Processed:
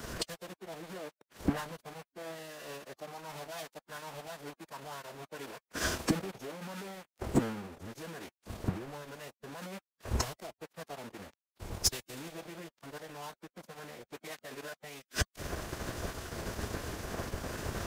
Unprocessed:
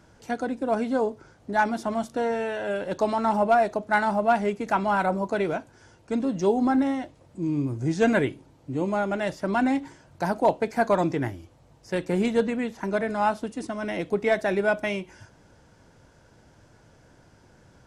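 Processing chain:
in parallel at −1 dB: brickwall limiter −17 dBFS, peak gain reduction 5.5 dB
on the sum: leveller curve on the samples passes 2
downward compressor 16 to 1, threshold −20 dBFS, peak gain reduction 10 dB
gate with flip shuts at −26 dBFS, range −33 dB
bit reduction 9 bits
phase-vocoder pitch shift with formants kept −6 semitones
soft clipping −35 dBFS, distortion −17 dB
multiband upward and downward expander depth 100%
level +10.5 dB

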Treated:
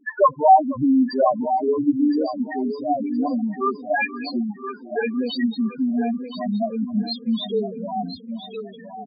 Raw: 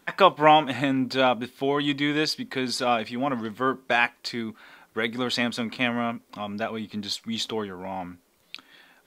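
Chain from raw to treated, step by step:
in parallel at 0 dB: downward compressor 6 to 1, threshold −34 dBFS, peak gain reduction 21 dB
on the sum: echo with a time of its own for lows and highs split 1,600 Hz, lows 478 ms, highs 224 ms, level −15.5 dB
spectral peaks only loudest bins 2
0:01.45–0:03.25: phaser swept by the level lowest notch 480 Hz, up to 1,400 Hz, full sweep at −22 dBFS
repeating echo 1,017 ms, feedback 25%, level −9.5 dB
level +7 dB

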